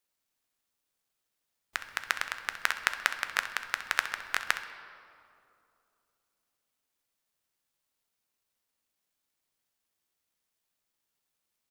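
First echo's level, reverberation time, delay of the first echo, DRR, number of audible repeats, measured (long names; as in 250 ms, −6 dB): −13.5 dB, 2.6 s, 65 ms, 7.0 dB, 1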